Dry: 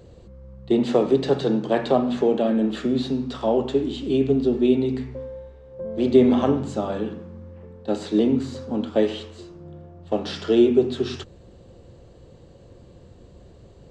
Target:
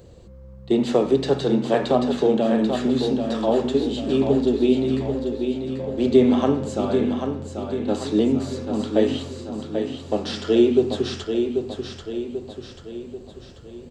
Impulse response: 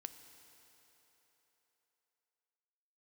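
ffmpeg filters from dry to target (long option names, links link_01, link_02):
-filter_complex "[0:a]crystalizer=i=1:c=0,asplit=2[link_01][link_02];[link_02]aecho=0:1:788|1576|2364|3152|3940|4728:0.473|0.237|0.118|0.0591|0.0296|0.0148[link_03];[link_01][link_03]amix=inputs=2:normalize=0"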